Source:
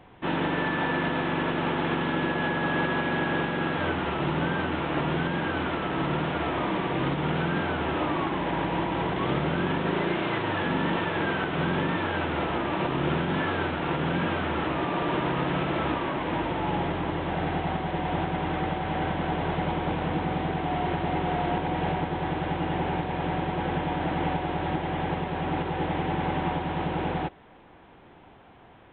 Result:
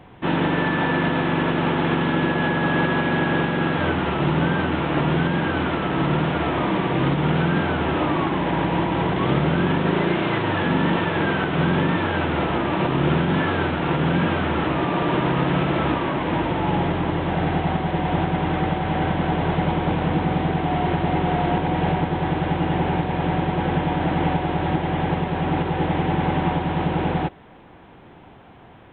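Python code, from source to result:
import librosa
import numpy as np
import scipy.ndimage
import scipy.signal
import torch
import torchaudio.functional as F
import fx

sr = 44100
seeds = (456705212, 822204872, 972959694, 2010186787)

y = fx.peak_eq(x, sr, hz=140.0, db=4.0, octaves=2.0)
y = y * librosa.db_to_amplitude(4.5)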